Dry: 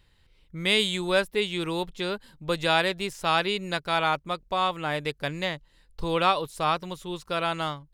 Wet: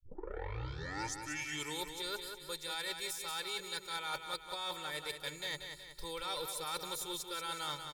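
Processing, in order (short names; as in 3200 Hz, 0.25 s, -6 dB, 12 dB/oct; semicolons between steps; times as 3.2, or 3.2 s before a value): tape start at the beginning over 1.83 s; pre-emphasis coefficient 0.9; notch 2800 Hz, Q 5.1; comb 2.2 ms, depth 84%; de-hum 141 Hz, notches 3; reverse; compressor 10:1, threshold -46 dBFS, peak gain reduction 17.5 dB; reverse; soft clip -38.5 dBFS, distortion -22 dB; on a send: feedback echo 0.185 s, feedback 48%, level -7 dB; on the sum: gain +9.5 dB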